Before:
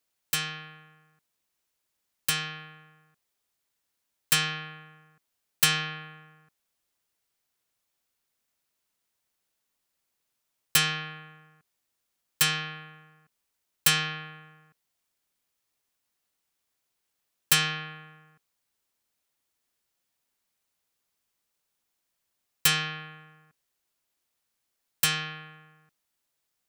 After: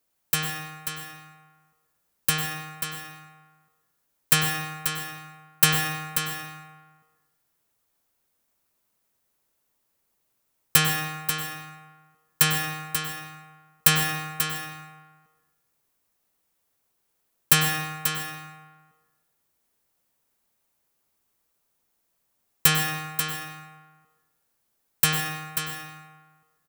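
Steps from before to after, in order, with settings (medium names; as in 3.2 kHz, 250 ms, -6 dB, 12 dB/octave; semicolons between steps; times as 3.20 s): peaking EQ 3.8 kHz -7.5 dB 2.8 oct; on a send: delay 537 ms -8 dB; on the sum: plate-style reverb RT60 1 s, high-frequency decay 0.7×, pre-delay 90 ms, DRR 6 dB; trim +7 dB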